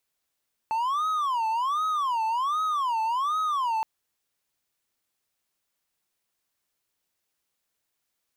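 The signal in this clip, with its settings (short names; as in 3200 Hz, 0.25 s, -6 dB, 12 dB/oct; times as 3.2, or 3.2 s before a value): siren wail 881–1270 Hz 1.3/s triangle -21.5 dBFS 3.12 s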